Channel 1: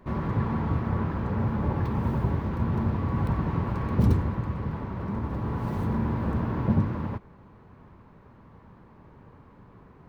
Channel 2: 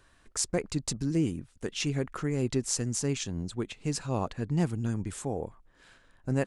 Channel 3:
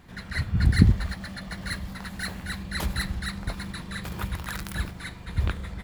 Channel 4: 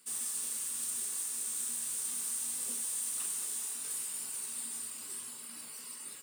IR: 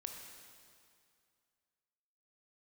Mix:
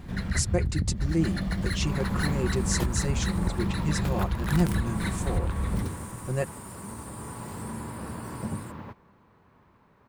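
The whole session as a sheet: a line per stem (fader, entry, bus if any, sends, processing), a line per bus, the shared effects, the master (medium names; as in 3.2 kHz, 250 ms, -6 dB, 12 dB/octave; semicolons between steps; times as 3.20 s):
-6.0 dB, 1.75 s, no bus, send -13.5 dB, tilt EQ +2 dB/octave
-2.0 dB, 0.00 s, no bus, no send, comb 5.6 ms, depth 83%
+2.0 dB, 0.00 s, bus A, no send, bass shelf 480 Hz +10 dB; compression, threshold -15 dBFS, peak gain reduction 13.5 dB
-5.0 dB, 2.50 s, muted 3.59–4.51 s, bus A, no send, peak limiter -33.5 dBFS, peak gain reduction 9.5 dB
bus A: 0.0 dB, compression 8:1, threshold -24 dBFS, peak gain reduction 14 dB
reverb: on, RT60 2.3 s, pre-delay 18 ms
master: none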